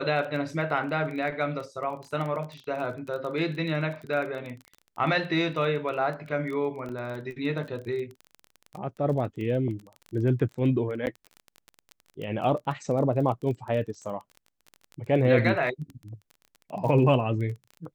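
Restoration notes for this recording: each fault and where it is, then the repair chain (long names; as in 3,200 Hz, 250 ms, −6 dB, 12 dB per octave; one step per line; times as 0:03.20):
surface crackle 22 per second −34 dBFS
0:06.89–0:06.90: drop-out 5.8 ms
0:11.06–0:11.07: drop-out 9.6 ms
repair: click removal
repair the gap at 0:06.89, 5.8 ms
repair the gap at 0:11.06, 9.6 ms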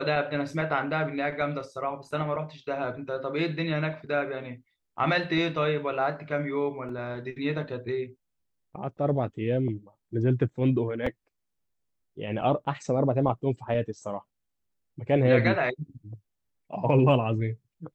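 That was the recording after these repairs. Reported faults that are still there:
none of them is left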